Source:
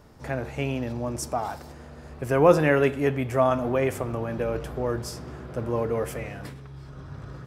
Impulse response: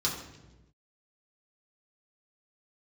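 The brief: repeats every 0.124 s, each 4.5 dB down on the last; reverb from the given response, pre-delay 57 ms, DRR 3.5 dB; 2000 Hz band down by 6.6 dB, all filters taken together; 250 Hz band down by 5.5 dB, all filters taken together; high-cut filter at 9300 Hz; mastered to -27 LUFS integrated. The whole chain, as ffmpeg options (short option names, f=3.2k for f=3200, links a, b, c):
-filter_complex "[0:a]lowpass=9.3k,equalizer=f=250:t=o:g=-7.5,equalizer=f=2k:t=o:g=-8.5,aecho=1:1:124|248|372|496|620|744|868|992|1116:0.596|0.357|0.214|0.129|0.0772|0.0463|0.0278|0.0167|0.01,asplit=2[a][b];[1:a]atrim=start_sample=2205,adelay=57[c];[b][c]afir=irnorm=-1:irlink=0,volume=-10.5dB[d];[a][d]amix=inputs=2:normalize=0,volume=-3dB"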